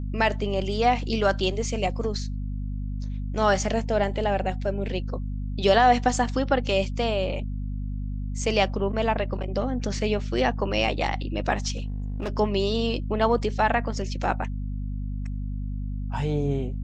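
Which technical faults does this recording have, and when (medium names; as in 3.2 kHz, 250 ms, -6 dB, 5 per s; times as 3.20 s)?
hum 50 Hz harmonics 5 -30 dBFS
11.76–12.29 s: clipped -25.5 dBFS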